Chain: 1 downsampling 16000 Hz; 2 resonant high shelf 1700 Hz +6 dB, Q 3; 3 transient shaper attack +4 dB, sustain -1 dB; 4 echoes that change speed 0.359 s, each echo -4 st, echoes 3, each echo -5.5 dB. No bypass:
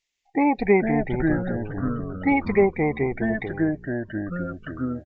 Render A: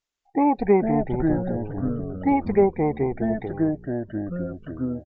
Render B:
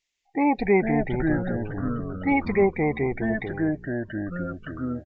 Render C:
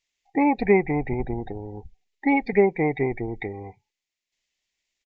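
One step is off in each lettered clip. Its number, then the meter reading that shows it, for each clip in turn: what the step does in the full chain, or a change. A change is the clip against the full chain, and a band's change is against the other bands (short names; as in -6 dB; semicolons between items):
2, 2 kHz band -10.5 dB; 3, crest factor change -2.0 dB; 4, crest factor change +1.5 dB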